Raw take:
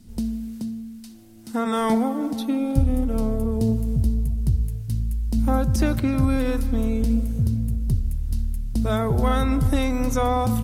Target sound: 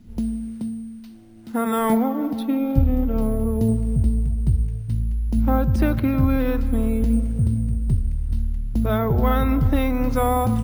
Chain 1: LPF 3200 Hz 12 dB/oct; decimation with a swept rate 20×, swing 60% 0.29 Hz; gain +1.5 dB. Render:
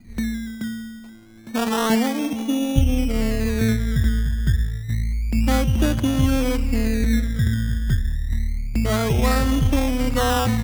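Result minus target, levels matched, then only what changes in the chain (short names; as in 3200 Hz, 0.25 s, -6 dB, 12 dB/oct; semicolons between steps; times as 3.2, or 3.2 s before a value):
decimation with a swept rate: distortion +15 dB
change: decimation with a swept rate 4×, swing 60% 0.29 Hz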